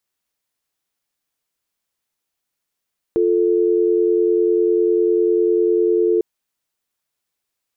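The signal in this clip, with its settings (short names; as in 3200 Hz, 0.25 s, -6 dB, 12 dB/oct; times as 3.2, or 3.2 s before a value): call progress tone dial tone, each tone -16 dBFS 3.05 s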